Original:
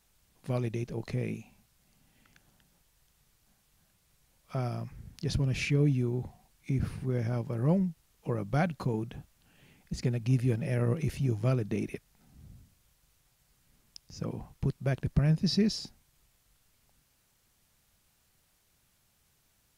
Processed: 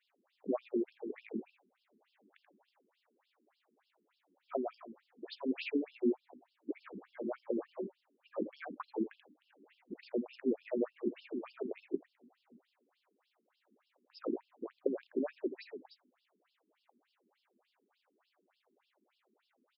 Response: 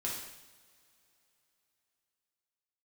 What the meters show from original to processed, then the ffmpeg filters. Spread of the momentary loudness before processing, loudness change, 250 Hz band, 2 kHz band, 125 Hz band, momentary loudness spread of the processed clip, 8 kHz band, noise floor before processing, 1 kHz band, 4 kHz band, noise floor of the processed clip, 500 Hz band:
15 LU, −8.5 dB, −6.0 dB, −9.5 dB, below −30 dB, 14 LU, below −30 dB, −71 dBFS, −7.5 dB, −14.0 dB, −81 dBFS, −2.0 dB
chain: -filter_complex "[0:a]asoftclip=type=hard:threshold=-16.5dB,afftfilt=real='re*lt(hypot(re,im),0.355)':imag='im*lt(hypot(re,im),0.355)':win_size=1024:overlap=0.75,aeval=exprs='val(0)+0.00178*(sin(2*PI*50*n/s)+sin(2*PI*2*50*n/s)/2+sin(2*PI*3*50*n/s)/3+sin(2*PI*4*50*n/s)/4+sin(2*PI*5*50*n/s)/5)':channel_layout=same,highpass=170,acompressor=threshold=-36dB:ratio=4,tiltshelf=frequency=1400:gain=7.5,bandreject=frequency=50:width_type=h:width=6,bandreject=frequency=100:width_type=h:width=6,bandreject=frequency=150:width_type=h:width=6,bandreject=frequency=200:width_type=h:width=6,bandreject=frequency=250:width_type=h:width=6,bandreject=frequency=300:width_type=h:width=6,asplit=2[link_01][link_02];[link_02]aecho=0:1:83:0.316[link_03];[link_01][link_03]amix=inputs=2:normalize=0,afftfilt=real='re*between(b*sr/1024,280*pow(3900/280,0.5+0.5*sin(2*PI*3.4*pts/sr))/1.41,280*pow(3900/280,0.5+0.5*sin(2*PI*3.4*pts/sr))*1.41)':imag='im*between(b*sr/1024,280*pow(3900/280,0.5+0.5*sin(2*PI*3.4*pts/sr))/1.41,280*pow(3900/280,0.5+0.5*sin(2*PI*3.4*pts/sr))*1.41)':win_size=1024:overlap=0.75,volume=4dB"

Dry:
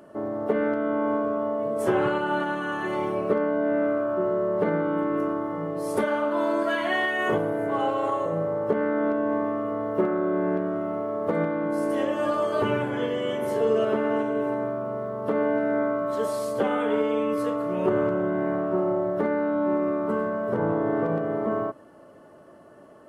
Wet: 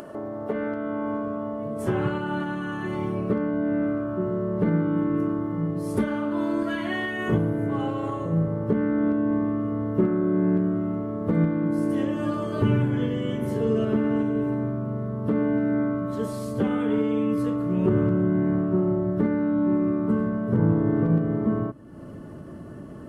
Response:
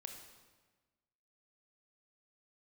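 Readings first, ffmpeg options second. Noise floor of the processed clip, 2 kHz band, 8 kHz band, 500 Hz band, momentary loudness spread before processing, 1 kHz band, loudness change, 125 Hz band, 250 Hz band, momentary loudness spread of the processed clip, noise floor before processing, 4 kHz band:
−39 dBFS, −4.5 dB, can't be measured, −4.5 dB, 4 LU, −6.0 dB, +0.5 dB, +11.0 dB, +4.5 dB, 7 LU, −50 dBFS, −4.0 dB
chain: -af "asubboost=boost=8.5:cutoff=210,acompressor=mode=upward:threshold=-26dB:ratio=2.5,volume=-3.5dB"

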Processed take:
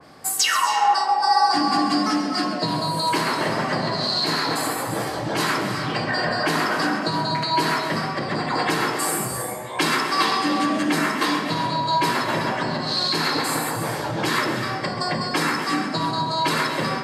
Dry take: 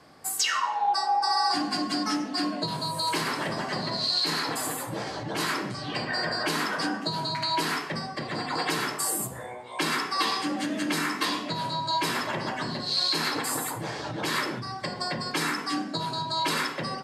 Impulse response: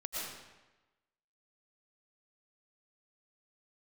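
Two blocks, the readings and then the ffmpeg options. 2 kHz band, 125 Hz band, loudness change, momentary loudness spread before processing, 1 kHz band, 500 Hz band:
+6.5 dB, +7.5 dB, +6.0 dB, 8 LU, +7.5 dB, +8.0 dB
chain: -filter_complex "[0:a]acontrast=65,asplit=2[link_01][link_02];[1:a]atrim=start_sample=2205,asetrate=43218,aresample=44100,adelay=133[link_03];[link_02][link_03]afir=irnorm=-1:irlink=0,volume=-7.5dB[link_04];[link_01][link_04]amix=inputs=2:normalize=0,adynamicequalizer=threshold=0.0224:dfrequency=2300:dqfactor=0.7:tfrequency=2300:tqfactor=0.7:attack=5:release=100:ratio=0.375:range=2.5:mode=cutabove:tftype=highshelf"

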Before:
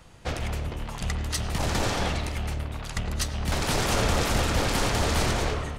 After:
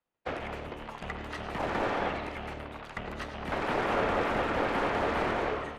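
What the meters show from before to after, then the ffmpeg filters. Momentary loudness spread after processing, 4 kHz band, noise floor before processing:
12 LU, −12.0 dB, −37 dBFS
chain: -filter_complex "[0:a]agate=range=-33dB:threshold=-31dB:ratio=3:detection=peak,acrossover=split=230 3400:gain=0.158 1 0.2[link_01][link_02][link_03];[link_01][link_02][link_03]amix=inputs=3:normalize=0,acrossover=split=2600[link_04][link_05];[link_05]acompressor=threshold=-51dB:ratio=4:attack=1:release=60[link_06];[link_04][link_06]amix=inputs=2:normalize=0"

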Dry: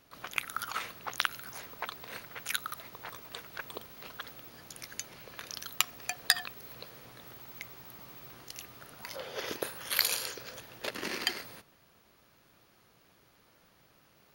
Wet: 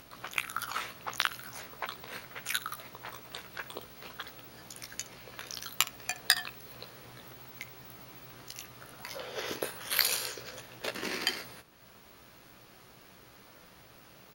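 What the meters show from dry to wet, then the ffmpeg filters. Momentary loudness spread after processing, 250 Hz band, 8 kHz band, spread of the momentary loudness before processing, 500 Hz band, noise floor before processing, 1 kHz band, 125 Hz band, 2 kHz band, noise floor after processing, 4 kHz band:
26 LU, +1.0 dB, +1.0 dB, 18 LU, +1.0 dB, −65 dBFS, +1.0 dB, +2.5 dB, +1.0 dB, −56 dBFS, +1.0 dB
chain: -filter_complex "[0:a]acompressor=mode=upward:threshold=-47dB:ratio=2.5,asplit=2[link_01][link_02];[link_02]aecho=0:1:16|66:0.473|0.133[link_03];[link_01][link_03]amix=inputs=2:normalize=0"

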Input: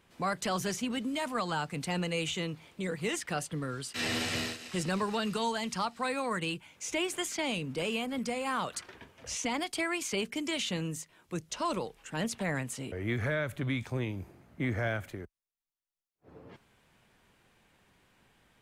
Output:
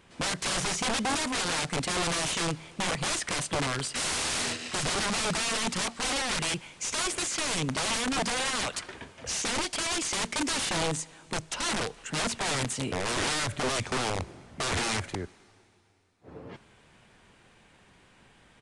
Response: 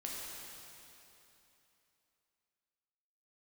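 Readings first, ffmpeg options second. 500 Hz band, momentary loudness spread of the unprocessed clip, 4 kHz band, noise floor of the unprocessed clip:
+1.0 dB, 7 LU, +7.5 dB, −77 dBFS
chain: -filter_complex "[0:a]aeval=exprs='(mod(35.5*val(0)+1,2)-1)/35.5':channel_layout=same,asplit=2[link_01][link_02];[1:a]atrim=start_sample=2205[link_03];[link_02][link_03]afir=irnorm=-1:irlink=0,volume=-21dB[link_04];[link_01][link_04]amix=inputs=2:normalize=0,aresample=22050,aresample=44100,volume=7dB"

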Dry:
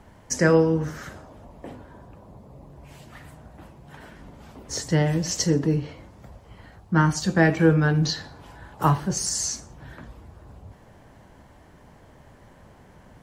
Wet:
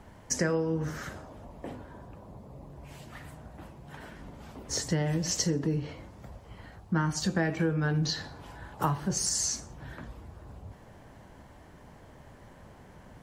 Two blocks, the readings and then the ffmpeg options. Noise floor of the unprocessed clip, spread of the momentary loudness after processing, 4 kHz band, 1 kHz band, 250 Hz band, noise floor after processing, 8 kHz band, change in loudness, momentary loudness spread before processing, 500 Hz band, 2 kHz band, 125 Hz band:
−52 dBFS, 20 LU, −3.5 dB, −8.0 dB, −8.0 dB, −53 dBFS, −2.5 dB, −7.5 dB, 18 LU, −9.5 dB, −8.5 dB, −7.5 dB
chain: -af "acompressor=threshold=-24dB:ratio=5,volume=-1dB"

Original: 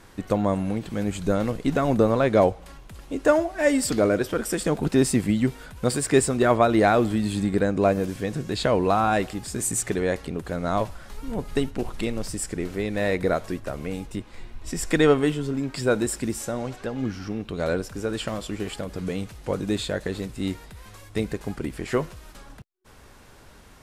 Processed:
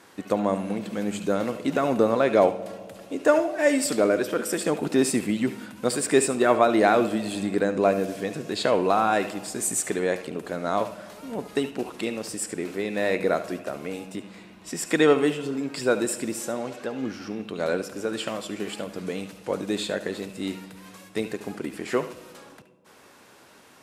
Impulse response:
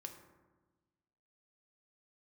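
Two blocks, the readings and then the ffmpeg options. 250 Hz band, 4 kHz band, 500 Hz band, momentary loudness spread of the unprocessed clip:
−2.0 dB, +0.5 dB, 0.0 dB, 12 LU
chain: -filter_complex "[0:a]highpass=230,asplit=2[link_01][link_02];[link_02]equalizer=frequency=2600:width=5.8:gain=14[link_03];[1:a]atrim=start_sample=2205,asetrate=25578,aresample=44100,adelay=72[link_04];[link_03][link_04]afir=irnorm=-1:irlink=0,volume=-11.5dB[link_05];[link_01][link_05]amix=inputs=2:normalize=0"

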